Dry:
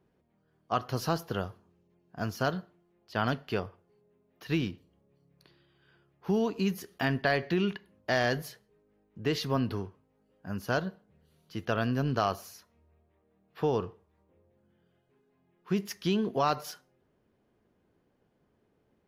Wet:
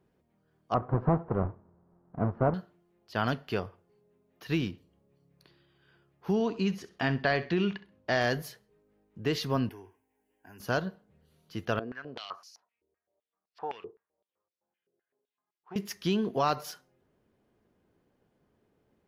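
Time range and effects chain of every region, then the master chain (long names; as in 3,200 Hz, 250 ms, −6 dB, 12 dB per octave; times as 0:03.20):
0:00.74–0:02.54: each half-wave held at its own peak + low-pass filter 1,200 Hz 24 dB per octave
0:06.33–0:08.21: low-pass filter 6,000 Hz + flutter between parallel walls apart 11.2 metres, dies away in 0.24 s
0:09.69–0:10.60: spectral tilt +2 dB per octave + downward compressor 2 to 1, threshold −45 dBFS + phaser with its sweep stopped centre 830 Hz, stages 8
0:11.79–0:15.76: leveller curve on the samples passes 1 + band-pass on a step sequencer 7.8 Hz 400–5,000 Hz
whole clip: no processing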